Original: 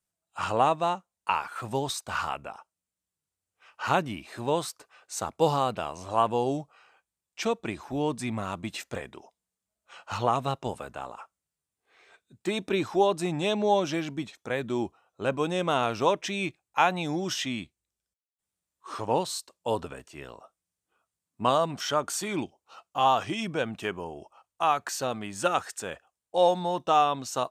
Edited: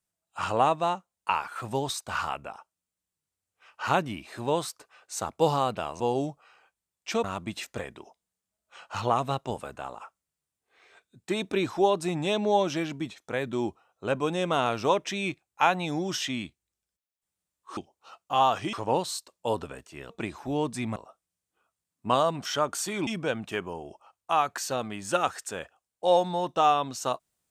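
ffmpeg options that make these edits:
-filter_complex "[0:a]asplit=8[a][b][c][d][e][f][g][h];[a]atrim=end=6.002[i];[b]atrim=start=6.308:end=7.552[j];[c]atrim=start=8.408:end=18.942[k];[d]atrim=start=22.418:end=23.382[l];[e]atrim=start=18.938:end=20.312[m];[f]atrim=start=7.548:end=8.412[n];[g]atrim=start=20.308:end=22.422[o];[h]atrim=start=23.378[p];[i][j]acrossfade=d=0.004:c1=hsin:c2=hsin[q];[q][k]acrossfade=d=0.004:c1=hsin:c2=hsin[r];[r][l]acrossfade=d=0.004:c1=hsin:c2=hsin[s];[s][m]acrossfade=d=0.004:c1=hsin:c2=hsin[t];[t][n]acrossfade=d=0.004:c1=hsin:c2=hsin[u];[u][o]acrossfade=d=0.004:c1=hsin:c2=hsin[v];[v][p]acrossfade=d=0.004:c1=hsin:c2=hsin"

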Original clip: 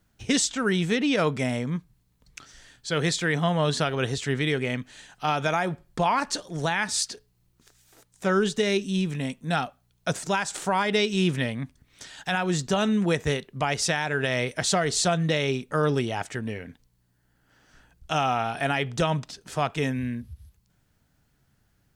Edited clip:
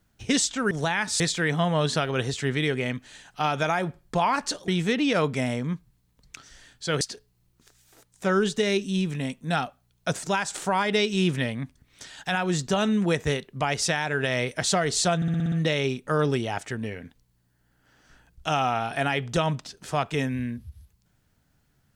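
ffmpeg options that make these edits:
-filter_complex "[0:a]asplit=11[a][b][c][d][e][f][g][h][i][j][k];[a]atrim=end=0.712[l];[b]atrim=start=6.518:end=7.012[m];[c]atrim=start=3.038:end=6.522[n];[d]atrim=start=0.708:end=3.042[o];[e]atrim=start=7.008:end=15.222[p];[f]atrim=start=15.158:end=15.222[q];[g]atrim=start=15.158:end=15.222[r];[h]atrim=start=15.158:end=15.222[s];[i]atrim=start=15.158:end=15.222[t];[j]atrim=start=15.158:end=15.222[u];[k]atrim=start=15.158[v];[l][m]acrossfade=d=0.004:c1=hsin:c2=hsin[w];[w][n]acrossfade=d=0.004:c1=hsin:c2=hsin[x];[x][o]acrossfade=d=0.004:c1=hsin:c2=hsin[y];[y][p]acrossfade=d=0.004:c1=hsin:c2=hsin[z];[z][q]acrossfade=d=0.004:c1=hsin:c2=hsin[aa];[aa][r]acrossfade=d=0.004:c1=hsin:c2=hsin[ab];[ab][s]acrossfade=d=0.004:c1=hsin:c2=hsin[ac];[ac][t]acrossfade=d=0.004:c1=hsin:c2=hsin[ad];[ad][u]acrossfade=d=0.004:c1=hsin:c2=hsin[ae];[ae][v]acrossfade=d=0.004:c1=hsin:c2=hsin"

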